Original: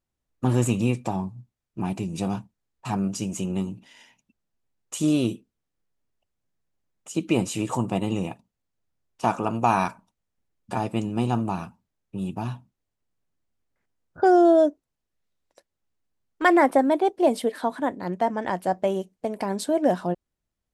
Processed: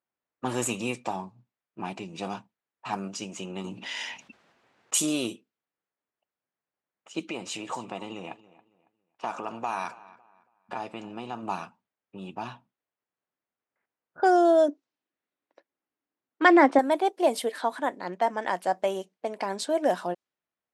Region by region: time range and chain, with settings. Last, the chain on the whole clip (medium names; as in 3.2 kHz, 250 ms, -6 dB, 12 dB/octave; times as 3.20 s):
3.64–5.06 s: treble shelf 6.4 kHz +5 dB + level flattener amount 50%
7.30–11.43 s: compression 3:1, threshold -27 dBFS + feedback delay 277 ms, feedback 30%, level -19 dB
14.68–16.79 s: low-pass 6.3 kHz 24 dB/octave + peaking EQ 290 Hz +10.5 dB 0.65 oct
whole clip: frequency weighting A; level-controlled noise filter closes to 2.1 kHz, open at -24 dBFS; treble shelf 9.1 kHz +9 dB